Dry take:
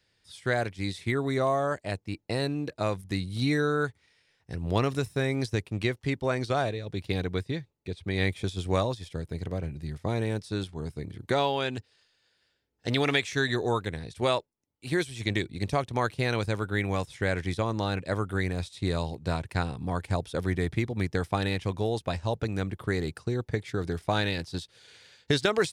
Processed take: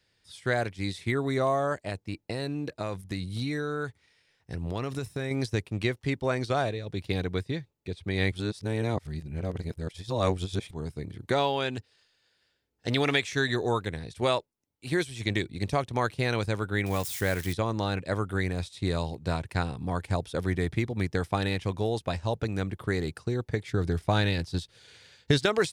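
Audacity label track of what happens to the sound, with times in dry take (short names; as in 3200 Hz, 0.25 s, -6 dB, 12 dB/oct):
1.830000	5.310000	compressor, threshold -27 dBFS
8.320000	10.710000	reverse
16.860000	17.530000	switching spikes of -29 dBFS
23.710000	25.390000	low shelf 150 Hz +8 dB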